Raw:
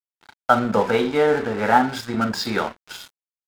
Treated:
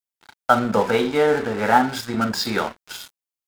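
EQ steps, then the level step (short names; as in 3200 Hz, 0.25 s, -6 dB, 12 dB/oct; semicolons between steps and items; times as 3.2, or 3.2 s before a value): high shelf 6100 Hz +6 dB; 0.0 dB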